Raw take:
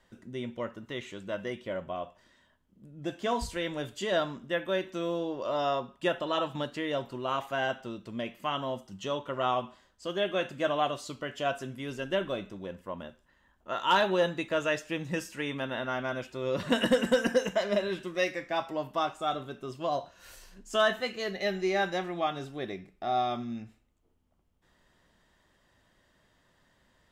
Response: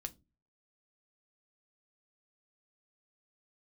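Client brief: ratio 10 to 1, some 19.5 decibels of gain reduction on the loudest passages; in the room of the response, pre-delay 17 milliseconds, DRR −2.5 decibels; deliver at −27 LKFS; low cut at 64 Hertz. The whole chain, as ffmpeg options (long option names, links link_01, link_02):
-filter_complex "[0:a]highpass=64,acompressor=threshold=-40dB:ratio=10,asplit=2[link_01][link_02];[1:a]atrim=start_sample=2205,adelay=17[link_03];[link_02][link_03]afir=irnorm=-1:irlink=0,volume=5.5dB[link_04];[link_01][link_04]amix=inputs=2:normalize=0,volume=13dB"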